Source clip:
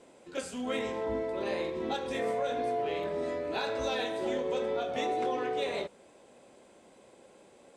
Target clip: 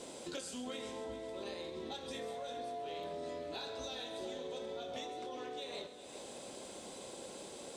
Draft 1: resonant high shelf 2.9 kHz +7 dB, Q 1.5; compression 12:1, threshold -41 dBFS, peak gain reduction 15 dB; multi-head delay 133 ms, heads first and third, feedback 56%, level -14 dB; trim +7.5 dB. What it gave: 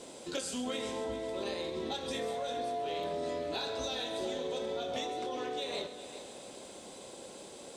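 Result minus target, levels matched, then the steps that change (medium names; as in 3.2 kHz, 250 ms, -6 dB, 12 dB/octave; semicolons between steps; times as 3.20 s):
compression: peak gain reduction -7 dB
change: compression 12:1, threshold -48.5 dBFS, peak gain reduction 22 dB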